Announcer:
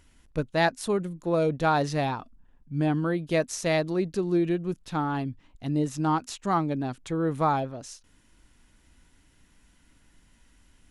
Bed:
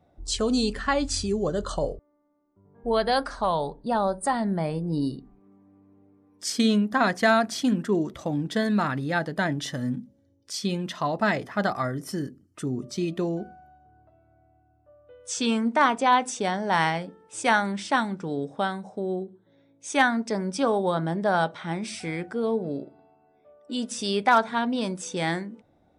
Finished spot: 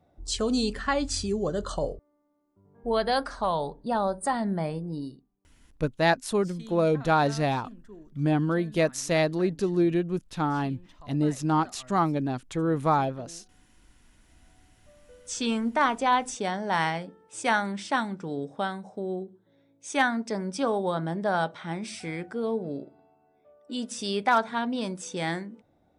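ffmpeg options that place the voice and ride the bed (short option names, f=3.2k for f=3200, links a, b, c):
-filter_complex "[0:a]adelay=5450,volume=1dB[a];[1:a]volume=18.5dB,afade=t=out:st=4.64:d=0.64:silence=0.0841395,afade=t=in:st=14.17:d=0.44:silence=0.0944061[b];[a][b]amix=inputs=2:normalize=0"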